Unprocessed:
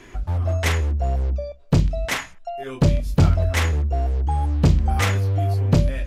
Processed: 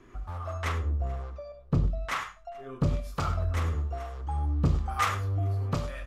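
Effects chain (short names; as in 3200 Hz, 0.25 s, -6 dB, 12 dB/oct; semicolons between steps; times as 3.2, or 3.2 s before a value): 0.58–2.76 high shelf 5700 Hz -7.5 dB; echo 0.433 s -23 dB; non-linear reverb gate 0.12 s rising, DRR 9.5 dB; harmonic tremolo 1.1 Hz, depth 70%, crossover 560 Hz; bell 1200 Hz +14 dB 0.42 oct; gain -8 dB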